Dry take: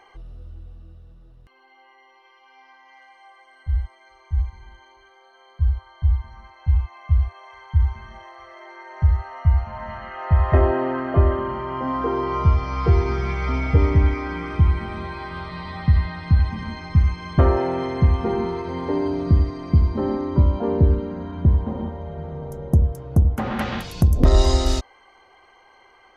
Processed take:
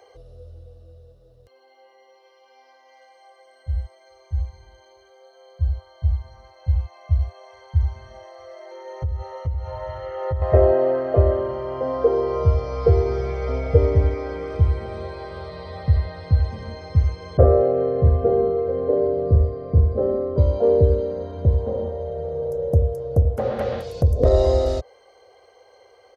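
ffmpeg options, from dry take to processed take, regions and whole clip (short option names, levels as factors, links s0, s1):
-filter_complex "[0:a]asettb=1/sr,asplit=3[s0][s1][s2];[s0]atrim=end=8.714[s3];[s1]atrim=start=8.71:end=10.42,asetpts=PTS-STARTPTS,afade=t=in:d=0.004:c=qsin,afade=t=out:st=1.706:d=0.004:c=qsin,aecho=1:1:2.2:0.98,atrim=end_sample=75411,acompressor=threshold=0.0891:ratio=5:attack=3.2:release=140:knee=1:detection=peak[s4];[s2]atrim=start=10.416[s5];[s3][s4]acrossfade=d=0.004:c1=hsin:c2=qsin[s6];[s6][s5]acrossfade=d=0.004:c1=qsin:c2=hsin,asettb=1/sr,asplit=3[s7][s8][s9];[s7]atrim=end=17.374[s10];[s8]atrim=start=17.37:end=20.38,asetpts=PTS-STARTPTS,afade=t=in:d=0.004:c=qsin,afade=t=out:st=3.006:d=0.004:c=qsin,lowpass=1300,bandreject=f=920:w=5.9,asplit=2[s11][s12];[s12]adelay=39,volume=0.708[s13];[s11][s13]amix=inputs=2:normalize=0,atrim=end_sample=132741[s14];[s9]atrim=start=20.376[s15];[s10][s14]acrossfade=d=0.004:c1=hsin:c2=qsin[s16];[s16][s15]acrossfade=d=0.004:c1=qsin:c2=hsin,highpass=76,acrossover=split=2600[s17][s18];[s18]acompressor=threshold=0.00282:ratio=4:attack=1:release=60[s19];[s17][s19]amix=inputs=2:normalize=0,firequalizer=gain_entry='entry(110,0);entry(160,-11);entry(340,-7);entry(480,12);entry(890,-9);entry(2600,-9);entry(4200,2)':delay=0.05:min_phase=1,volume=1.26"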